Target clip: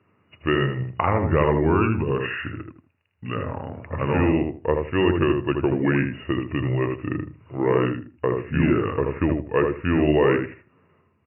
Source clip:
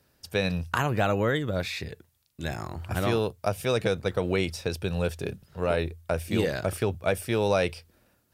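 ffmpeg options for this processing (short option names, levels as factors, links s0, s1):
-filter_complex "[0:a]afftfilt=real='re*between(b*sr/4096,100,3900)':imag='im*between(b*sr/4096,100,3900)':win_size=4096:overlap=0.75,asetrate=32634,aresample=44100,bandreject=f=730:w=12,asplit=2[s0][s1];[s1]adelay=79,lowpass=f=1300:p=1,volume=0.668,asplit=2[s2][s3];[s3]adelay=79,lowpass=f=1300:p=1,volume=0.23,asplit=2[s4][s5];[s5]adelay=79,lowpass=f=1300:p=1,volume=0.23[s6];[s2][s4][s6]amix=inputs=3:normalize=0[s7];[s0][s7]amix=inputs=2:normalize=0,volume=1.68"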